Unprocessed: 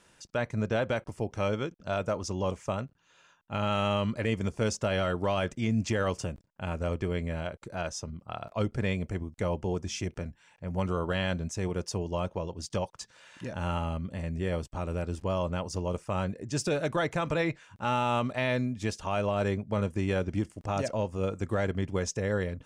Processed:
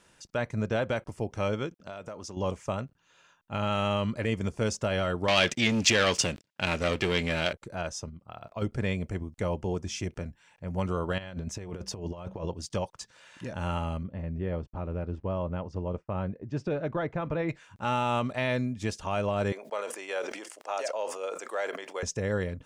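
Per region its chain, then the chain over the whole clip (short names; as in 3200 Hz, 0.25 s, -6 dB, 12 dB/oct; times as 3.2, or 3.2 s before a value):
1.74–2.37 HPF 170 Hz 6 dB/oct + compressor 5:1, threshold -37 dBFS
5.28–7.53 sample leveller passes 2 + weighting filter D
8.09–8.62 level quantiser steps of 11 dB + decimation joined by straight lines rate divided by 2×
11.18–12.55 bell 8900 Hz -7 dB 1.4 oct + de-hum 63.81 Hz, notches 3 + negative-ratio compressor -35 dBFS, ratio -0.5
14.03–17.49 expander -41 dBFS + tape spacing loss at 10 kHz 35 dB
19.52–22.03 HPF 490 Hz 24 dB/oct + sustainer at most 58 dB/s
whole clip: dry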